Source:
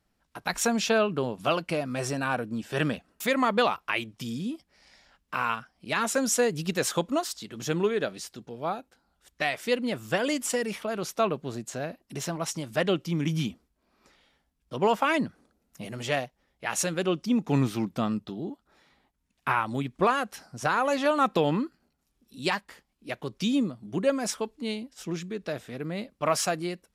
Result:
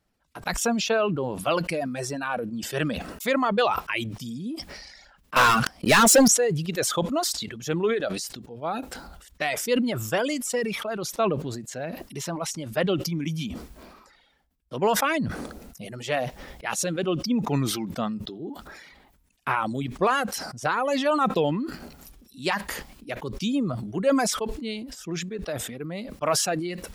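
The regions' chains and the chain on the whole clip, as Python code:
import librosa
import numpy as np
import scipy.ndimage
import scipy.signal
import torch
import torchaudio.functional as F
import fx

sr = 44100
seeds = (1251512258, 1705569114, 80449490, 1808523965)

y = fx.chain(x, sr, fx.high_shelf(hz=3600.0, db=3.5),
    fx.leveller(passes=5), at=(5.36, 6.28))
y = fx.dereverb_blind(y, sr, rt60_s=1.8)
y = fx.peak_eq(y, sr, hz=530.0, db=2.0, octaves=0.77)
y = fx.sustainer(y, sr, db_per_s=41.0)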